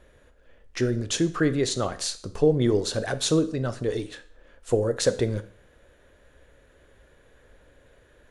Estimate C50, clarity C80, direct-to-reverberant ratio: 16.0 dB, 19.5 dB, 11.0 dB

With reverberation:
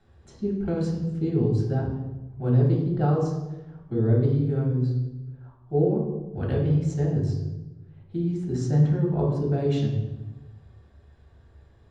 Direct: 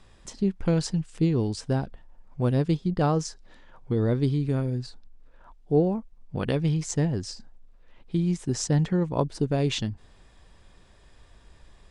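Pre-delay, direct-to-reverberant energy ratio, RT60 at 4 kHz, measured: 3 ms, −4.0 dB, 0.80 s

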